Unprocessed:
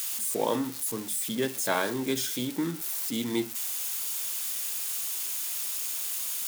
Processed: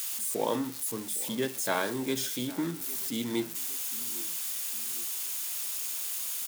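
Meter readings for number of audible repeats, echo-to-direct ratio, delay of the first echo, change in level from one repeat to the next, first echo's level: 2, -18.0 dB, 808 ms, -6.0 dB, -19.0 dB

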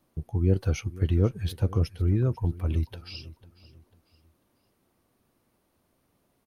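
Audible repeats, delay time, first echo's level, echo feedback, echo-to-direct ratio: 2, 496 ms, -19.0 dB, 35%, -18.5 dB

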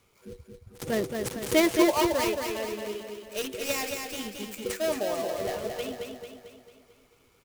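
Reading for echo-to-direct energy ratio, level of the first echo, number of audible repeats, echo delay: -3.5 dB, -5.0 dB, 6, 223 ms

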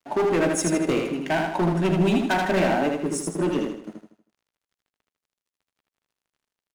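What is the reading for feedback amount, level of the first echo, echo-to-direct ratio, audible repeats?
41%, -4.0 dB, -3.0 dB, 5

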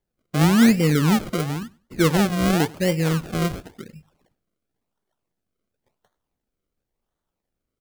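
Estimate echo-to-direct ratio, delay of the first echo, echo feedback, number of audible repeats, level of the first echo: -23.5 dB, 98 ms, no regular repeats, 1, -23.5 dB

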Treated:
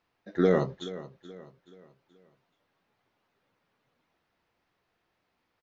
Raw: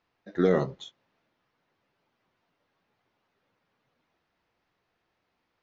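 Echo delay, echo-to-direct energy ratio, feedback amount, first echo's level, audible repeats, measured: 428 ms, -15.0 dB, 41%, -16.0 dB, 3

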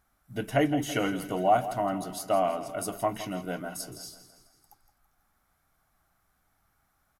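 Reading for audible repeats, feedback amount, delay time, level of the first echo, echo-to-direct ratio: 4, 53%, 165 ms, -13.0 dB, -11.5 dB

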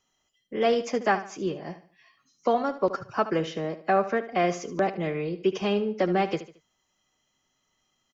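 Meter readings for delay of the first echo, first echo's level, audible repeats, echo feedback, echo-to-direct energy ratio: 74 ms, -13.5 dB, 3, 36%, -13.0 dB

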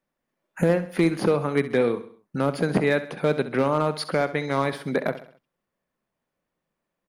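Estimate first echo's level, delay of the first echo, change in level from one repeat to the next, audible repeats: -13.5 dB, 66 ms, -6.5 dB, 4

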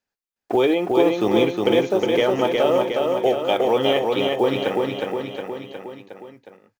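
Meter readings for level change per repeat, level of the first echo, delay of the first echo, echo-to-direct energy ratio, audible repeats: -4.5 dB, -3.0 dB, 362 ms, -1.0 dB, 5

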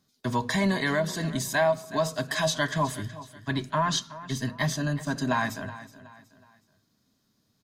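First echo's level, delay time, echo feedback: -16.0 dB, 371 ms, 37%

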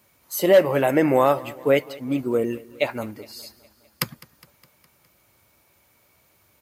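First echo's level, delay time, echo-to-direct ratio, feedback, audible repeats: -21.5 dB, 206 ms, -19.5 dB, 60%, 4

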